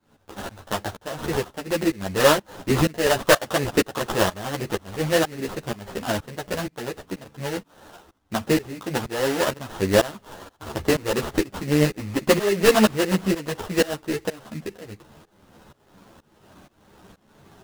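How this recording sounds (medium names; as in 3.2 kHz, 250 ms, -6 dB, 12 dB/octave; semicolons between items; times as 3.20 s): tremolo saw up 2.1 Hz, depth 95%; aliases and images of a low sample rate 2.3 kHz, jitter 20%; a shimmering, thickened sound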